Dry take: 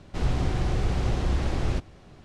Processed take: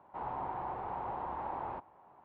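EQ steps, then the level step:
resonant band-pass 910 Hz, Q 7
high-frequency loss of the air 420 metres
+10.0 dB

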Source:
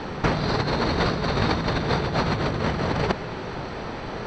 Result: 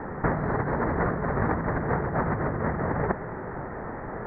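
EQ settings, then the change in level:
elliptic low-pass filter 1,900 Hz, stop band 40 dB
−2.0 dB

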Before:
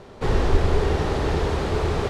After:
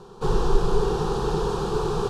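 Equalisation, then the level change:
phaser with its sweep stopped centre 410 Hz, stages 8
+1.5 dB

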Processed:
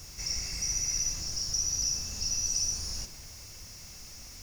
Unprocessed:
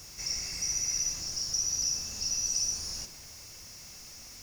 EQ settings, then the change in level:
low-shelf EQ 110 Hz +10 dB
0.0 dB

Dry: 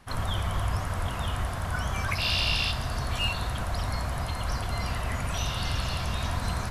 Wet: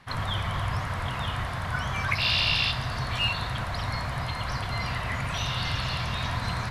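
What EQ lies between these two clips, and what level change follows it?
octave-band graphic EQ 125/250/500/1,000/2,000/4,000 Hz +11/+3/+4/+7/+10/+9 dB
−7.5 dB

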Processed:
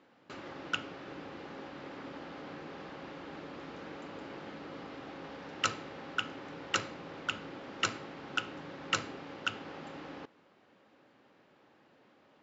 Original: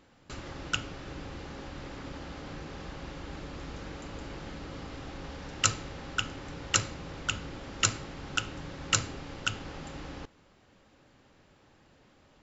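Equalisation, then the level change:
high-pass filter 230 Hz 12 dB per octave
low-pass filter 3,700 Hz 6 dB per octave
high-frequency loss of the air 91 metres
0.0 dB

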